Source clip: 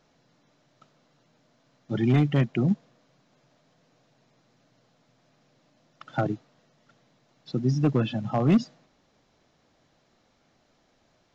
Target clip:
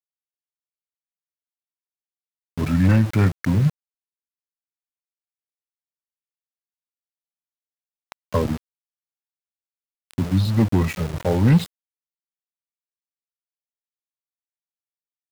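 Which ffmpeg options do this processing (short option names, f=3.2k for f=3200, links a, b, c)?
-af "asetrate=32667,aresample=44100,aemphasis=mode=production:type=cd,aeval=exprs='val(0)*gte(abs(val(0)),0.0237)':c=same,volume=5dB"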